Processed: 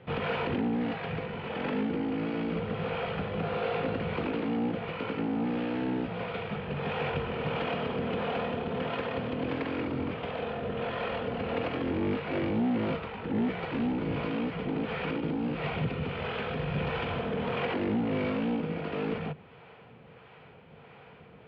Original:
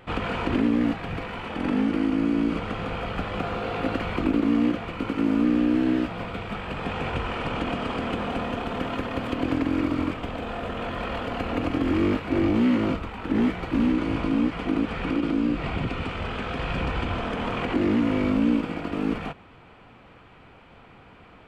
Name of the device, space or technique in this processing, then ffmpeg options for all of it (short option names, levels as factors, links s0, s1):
guitar amplifier with harmonic tremolo: -filter_complex "[0:a]acrossover=split=440[s0][s1];[s0]aeval=exprs='val(0)*(1-0.5/2+0.5/2*cos(2*PI*1.5*n/s))':c=same[s2];[s1]aeval=exprs='val(0)*(1-0.5/2-0.5/2*cos(2*PI*1.5*n/s))':c=same[s3];[s2][s3]amix=inputs=2:normalize=0,asoftclip=type=tanh:threshold=0.075,highpass=95,equalizer=f=150:t=q:w=4:g=7,equalizer=f=300:t=q:w=4:g=-8,equalizer=f=460:t=q:w=4:g=7,equalizer=f=1200:t=q:w=4:g=-4,lowpass=f=4000:w=0.5412,lowpass=f=4000:w=1.3066"